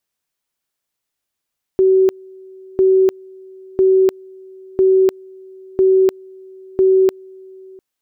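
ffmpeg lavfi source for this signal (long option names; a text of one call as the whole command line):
ffmpeg -f lavfi -i "aevalsrc='pow(10,(-8.5-27*gte(mod(t,1),0.3))/20)*sin(2*PI*379*t)':duration=6:sample_rate=44100" out.wav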